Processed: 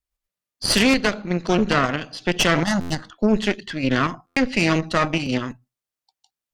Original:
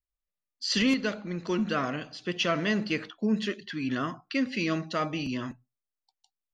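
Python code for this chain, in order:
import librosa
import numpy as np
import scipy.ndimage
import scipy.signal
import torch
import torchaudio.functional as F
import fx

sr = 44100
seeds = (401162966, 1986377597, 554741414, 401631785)

p1 = fx.cheby_harmonics(x, sr, harmonics=(4,), levels_db=(-9,), full_scale_db=-15.0)
p2 = fx.fixed_phaser(p1, sr, hz=1000.0, stages=4, at=(2.63, 3.12))
p3 = fx.level_steps(p2, sr, step_db=15)
p4 = p2 + F.gain(torch.from_numpy(p3), 1.0).numpy()
p5 = fx.buffer_glitch(p4, sr, at_s=(2.8, 4.26), block=512, repeats=8)
y = F.gain(torch.from_numpy(p5), 3.0).numpy()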